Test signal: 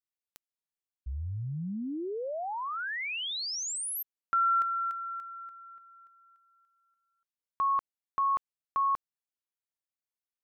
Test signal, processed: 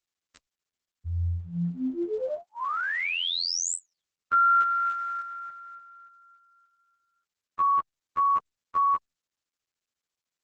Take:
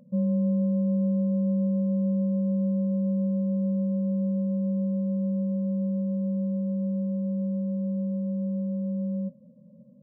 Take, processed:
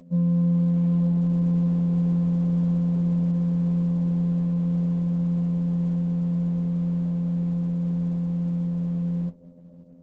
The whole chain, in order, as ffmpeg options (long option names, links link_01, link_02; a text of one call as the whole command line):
ffmpeg -i in.wav -af "asuperstop=centerf=790:order=8:qfactor=2.2,afftfilt=real='hypot(re,im)*cos(PI*b)':imag='0':win_size=2048:overlap=0.75,volume=9dB" -ar 48000 -c:a libopus -b:a 10k out.opus